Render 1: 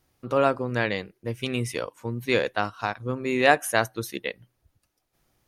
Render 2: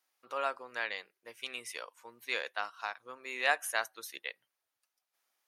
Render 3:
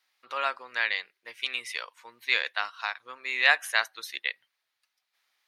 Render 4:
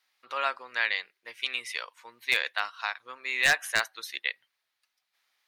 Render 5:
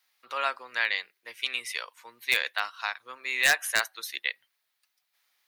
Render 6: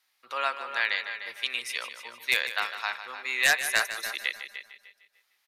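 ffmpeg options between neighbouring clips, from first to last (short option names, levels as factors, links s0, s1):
-af "highpass=900,volume=0.447"
-af "equalizer=f=1000:t=o:w=1:g=4,equalizer=f=2000:t=o:w=1:g=10,equalizer=f=4000:t=o:w=1:g=11,volume=0.794"
-af "aeval=exprs='0.251*(abs(mod(val(0)/0.251+3,4)-2)-1)':c=same"
-filter_complex "[0:a]highshelf=f=10000:g=11.5,acrossover=split=240[s0][s1];[s0]alimiter=level_in=9.44:limit=0.0631:level=0:latency=1:release=414,volume=0.106[s2];[s2][s1]amix=inputs=2:normalize=0"
-filter_complex "[0:a]asplit=2[s0][s1];[s1]adelay=299,lowpass=f=3000:p=1,volume=0.316,asplit=2[s2][s3];[s3]adelay=299,lowpass=f=3000:p=1,volume=0.25,asplit=2[s4][s5];[s5]adelay=299,lowpass=f=3000:p=1,volume=0.25[s6];[s2][s4][s6]amix=inputs=3:normalize=0[s7];[s0][s7]amix=inputs=2:normalize=0,aresample=32000,aresample=44100,asplit=2[s8][s9];[s9]aecho=0:1:152|304|456|608|760:0.266|0.133|0.0665|0.0333|0.0166[s10];[s8][s10]amix=inputs=2:normalize=0"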